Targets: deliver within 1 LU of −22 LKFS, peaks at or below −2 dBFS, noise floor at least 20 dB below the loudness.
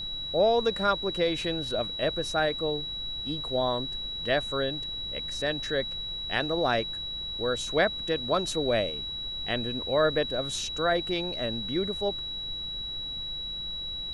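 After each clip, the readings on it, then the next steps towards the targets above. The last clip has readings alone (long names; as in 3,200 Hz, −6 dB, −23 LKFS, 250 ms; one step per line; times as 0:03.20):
interfering tone 3,900 Hz; level of the tone −33 dBFS; background noise floor −36 dBFS; target noise floor −49 dBFS; integrated loudness −28.5 LKFS; sample peak −10.5 dBFS; target loudness −22.0 LKFS
→ notch filter 3,900 Hz, Q 30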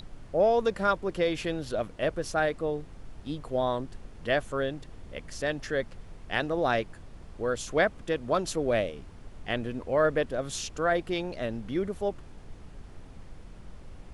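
interfering tone none found; background noise floor −48 dBFS; target noise floor −50 dBFS
→ noise reduction from a noise print 6 dB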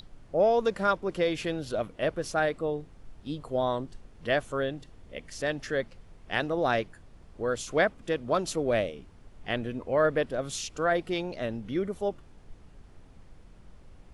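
background noise floor −53 dBFS; integrated loudness −29.5 LKFS; sample peak −11.0 dBFS; target loudness −22.0 LKFS
→ level +7.5 dB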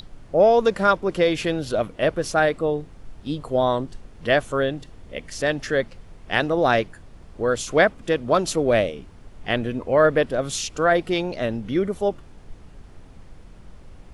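integrated loudness −22.0 LKFS; sample peak −3.5 dBFS; background noise floor −46 dBFS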